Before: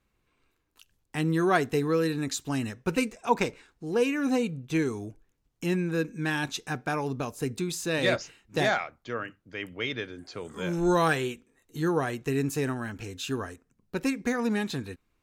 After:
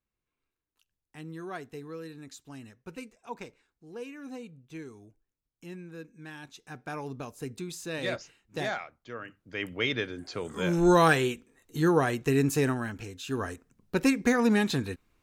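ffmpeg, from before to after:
-af "volume=13dB,afade=t=in:st=6.57:d=0.41:silence=0.375837,afade=t=in:st=9.21:d=0.46:silence=0.316228,afade=t=out:st=12.64:d=0.6:silence=0.354813,afade=t=in:st=13.24:d=0.26:silence=0.316228"

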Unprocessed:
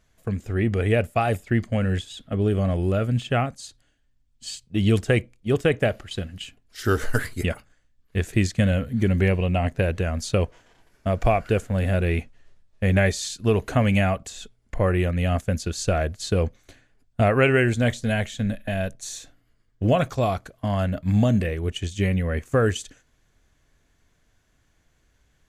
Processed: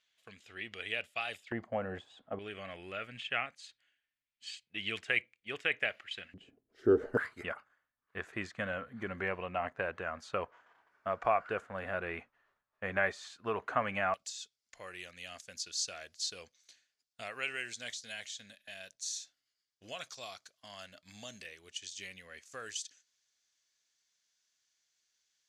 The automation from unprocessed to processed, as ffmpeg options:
-af "asetnsamples=n=441:p=0,asendcmd='1.52 bandpass f 840;2.39 bandpass f 2300;6.34 bandpass f 390;7.17 bandpass f 1200;14.14 bandpass f 5200',bandpass=f=3.3k:t=q:w=2.1:csg=0"

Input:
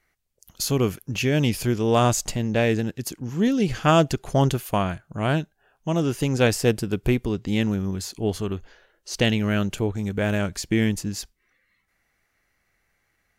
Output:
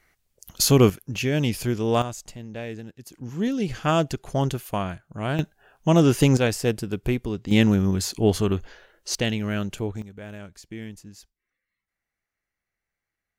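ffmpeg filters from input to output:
-af "asetnsamples=n=441:p=0,asendcmd='0.9 volume volume -2dB;2.02 volume volume -13dB;3.14 volume volume -4dB;5.39 volume volume 6dB;6.37 volume volume -3dB;7.51 volume volume 5dB;9.15 volume volume -4dB;10.02 volume volume -15.5dB',volume=6dB"

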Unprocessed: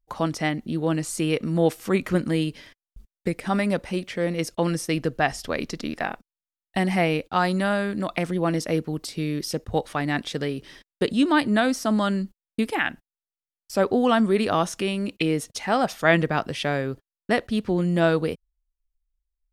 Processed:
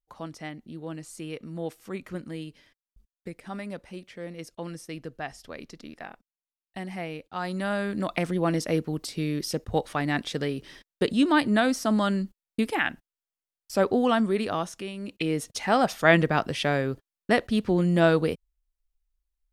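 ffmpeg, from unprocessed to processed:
-af "volume=9.5dB,afade=t=in:st=7.31:d=0.71:silence=0.266073,afade=t=out:st=13.85:d=1.08:silence=0.334965,afade=t=in:st=14.93:d=0.72:silence=0.281838"

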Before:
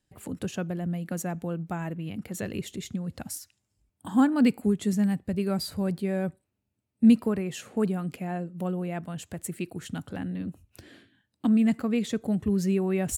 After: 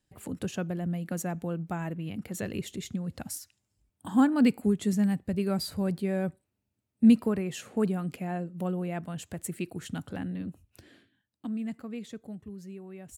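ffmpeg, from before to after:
-af "volume=-1dB,afade=t=out:st=10.14:d=1.35:silence=0.281838,afade=t=out:st=12.08:d=0.48:silence=0.501187"

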